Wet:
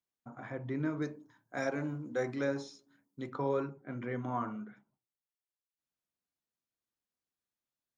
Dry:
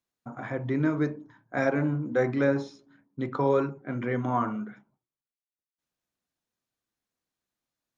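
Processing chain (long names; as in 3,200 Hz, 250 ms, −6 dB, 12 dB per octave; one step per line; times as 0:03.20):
0:01.02–0:03.34: bass and treble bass −3 dB, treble +12 dB
level −8.5 dB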